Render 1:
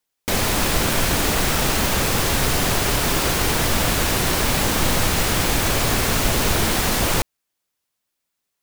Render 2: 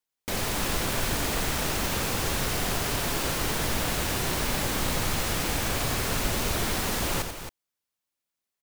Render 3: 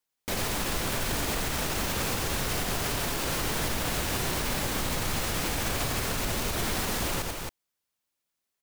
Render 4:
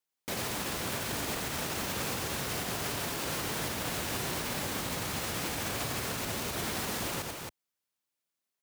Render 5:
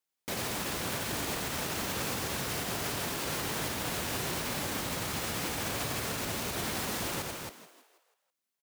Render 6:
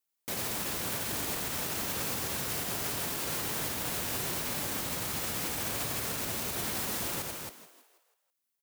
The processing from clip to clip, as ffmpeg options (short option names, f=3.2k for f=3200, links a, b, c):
-af "aecho=1:1:87.46|271.1:0.398|0.316,volume=-9dB"
-af "alimiter=limit=-22dB:level=0:latency=1:release=96,volume=2.5dB"
-af "highpass=88,volume=-4dB"
-filter_complex "[0:a]asplit=6[a][b][c][d][e][f];[b]adelay=162,afreqshift=85,volume=-13dB[g];[c]adelay=324,afreqshift=170,volume=-19.7dB[h];[d]adelay=486,afreqshift=255,volume=-26.5dB[i];[e]adelay=648,afreqshift=340,volume=-33.2dB[j];[f]adelay=810,afreqshift=425,volume=-40dB[k];[a][g][h][i][j][k]amix=inputs=6:normalize=0"
-af "highshelf=f=8.3k:g=8.5,volume=-2.5dB"